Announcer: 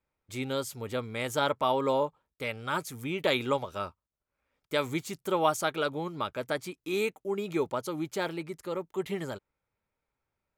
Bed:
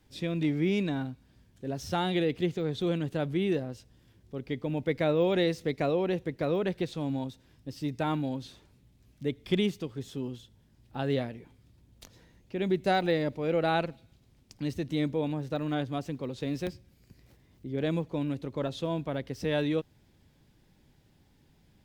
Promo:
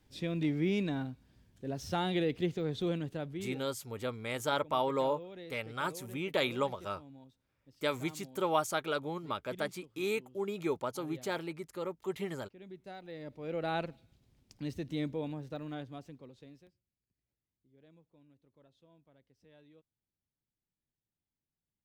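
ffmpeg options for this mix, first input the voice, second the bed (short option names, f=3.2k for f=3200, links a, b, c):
-filter_complex "[0:a]adelay=3100,volume=-4dB[a];[1:a]volume=12dB,afade=t=out:st=2.82:d=0.82:silence=0.125893,afade=t=in:st=13.07:d=0.76:silence=0.16788,afade=t=out:st=15:d=1.7:silence=0.0473151[b];[a][b]amix=inputs=2:normalize=0"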